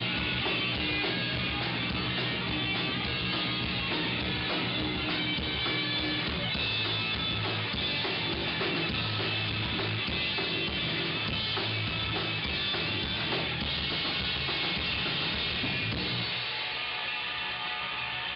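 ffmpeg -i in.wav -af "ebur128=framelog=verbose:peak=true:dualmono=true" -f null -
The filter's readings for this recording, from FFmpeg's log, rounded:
Integrated loudness:
  I:         -26.2 LUFS
  Threshold: -36.1 LUFS
Loudness range:
  LRA:         0.6 LU
  Threshold: -46.1 LUFS
  LRA low:   -26.3 LUFS
  LRA high:  -25.7 LUFS
True peak:
  Peak:      -20.7 dBFS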